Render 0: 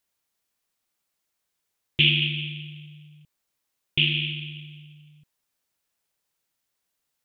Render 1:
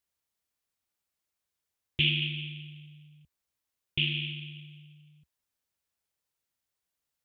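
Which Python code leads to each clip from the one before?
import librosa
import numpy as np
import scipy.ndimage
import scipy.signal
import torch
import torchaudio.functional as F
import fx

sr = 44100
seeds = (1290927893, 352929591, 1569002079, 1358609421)

y = fx.peak_eq(x, sr, hz=71.0, db=9.0, octaves=0.95)
y = y * 10.0 ** (-7.0 / 20.0)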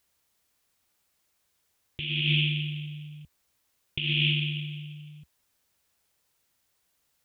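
y = fx.over_compress(x, sr, threshold_db=-35.0, ratio=-1.0)
y = y * 10.0 ** (8.5 / 20.0)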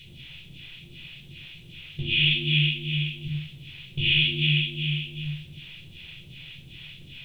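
y = fx.bin_compress(x, sr, power=0.4)
y = fx.phaser_stages(y, sr, stages=2, low_hz=160.0, high_hz=2300.0, hz=2.6, feedback_pct=40)
y = fx.room_shoebox(y, sr, seeds[0], volume_m3=410.0, walls='furnished', distance_m=4.8)
y = y * 10.0 ** (-5.5 / 20.0)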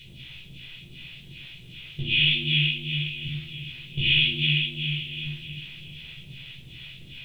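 y = fx.doubler(x, sr, ms=16.0, db=-8)
y = y + 10.0 ** (-17.0 / 20.0) * np.pad(y, (int(1010 * sr / 1000.0), 0))[:len(y)]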